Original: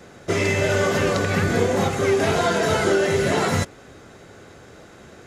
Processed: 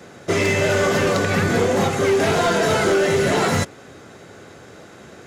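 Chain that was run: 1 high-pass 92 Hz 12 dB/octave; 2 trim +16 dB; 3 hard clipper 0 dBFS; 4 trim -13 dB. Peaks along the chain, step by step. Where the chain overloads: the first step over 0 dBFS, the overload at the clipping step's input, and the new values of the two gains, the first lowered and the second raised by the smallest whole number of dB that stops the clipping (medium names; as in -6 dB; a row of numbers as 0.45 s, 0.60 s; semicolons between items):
-9.0 dBFS, +7.0 dBFS, 0.0 dBFS, -13.0 dBFS; step 2, 7.0 dB; step 2 +9 dB, step 4 -6 dB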